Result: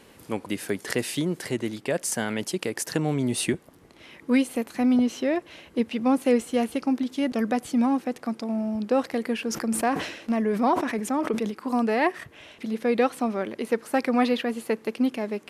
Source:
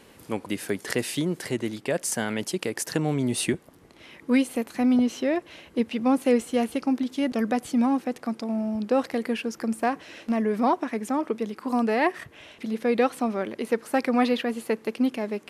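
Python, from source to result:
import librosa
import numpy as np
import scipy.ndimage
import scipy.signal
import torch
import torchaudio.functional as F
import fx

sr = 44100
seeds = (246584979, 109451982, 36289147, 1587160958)

y = fx.sustainer(x, sr, db_per_s=71.0, at=(9.39, 11.51))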